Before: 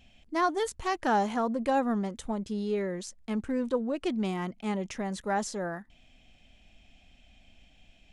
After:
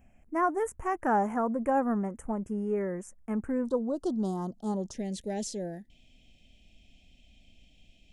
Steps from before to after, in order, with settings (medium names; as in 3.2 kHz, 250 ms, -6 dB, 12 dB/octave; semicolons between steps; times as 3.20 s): Butterworth band-stop 4 kHz, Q 0.62, from 3.65 s 2.3 kHz, from 4.93 s 1.2 kHz